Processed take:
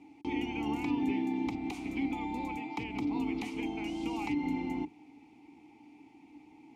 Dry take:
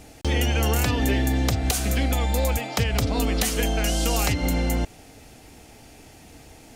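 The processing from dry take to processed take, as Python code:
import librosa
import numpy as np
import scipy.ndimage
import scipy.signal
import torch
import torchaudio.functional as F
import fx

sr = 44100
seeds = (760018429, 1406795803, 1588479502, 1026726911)

y = fx.octave_divider(x, sr, octaves=1, level_db=-2.0)
y = fx.vowel_filter(y, sr, vowel='u')
y = fx.low_shelf(y, sr, hz=100.0, db=-5.0)
y = F.gain(torch.from_numpy(y), 2.5).numpy()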